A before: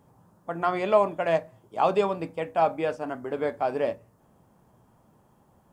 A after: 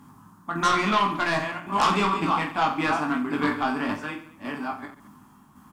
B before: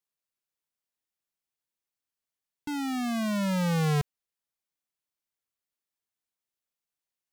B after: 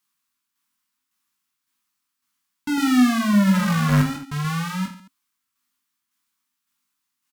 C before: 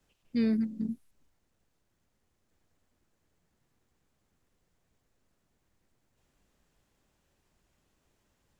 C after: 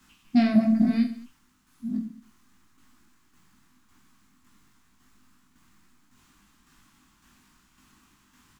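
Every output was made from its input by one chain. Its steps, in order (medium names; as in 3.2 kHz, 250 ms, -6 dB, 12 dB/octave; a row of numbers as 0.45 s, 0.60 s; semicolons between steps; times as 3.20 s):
chunks repeated in reverse 694 ms, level -8.5 dB; FFT filter 130 Hz 0 dB, 260 Hz +11 dB, 530 Hz -15 dB, 1.1 kHz +12 dB, 1.8 kHz +7 dB; tremolo saw down 1.8 Hz, depth 50%; in parallel at -6.5 dB: sine folder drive 9 dB, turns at -11.5 dBFS; on the sum: reverse bouncing-ball echo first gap 20 ms, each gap 1.4×, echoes 5; peak normalisation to -9 dBFS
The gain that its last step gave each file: -6.5 dB, -4.0 dB, -2.5 dB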